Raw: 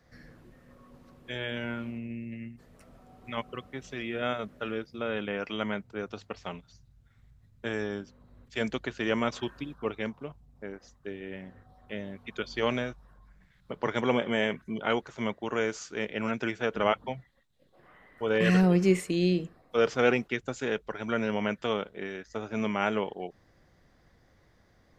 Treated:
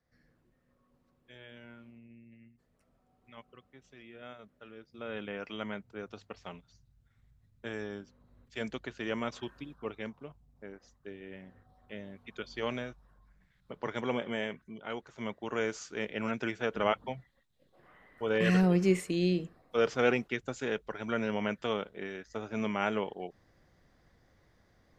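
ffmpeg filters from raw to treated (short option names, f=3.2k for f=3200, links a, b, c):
-af "volume=3.5dB,afade=t=in:st=4.76:d=0.41:silence=0.298538,afade=t=out:st=14.31:d=0.52:silence=0.473151,afade=t=in:st=14.83:d=0.82:silence=0.316228"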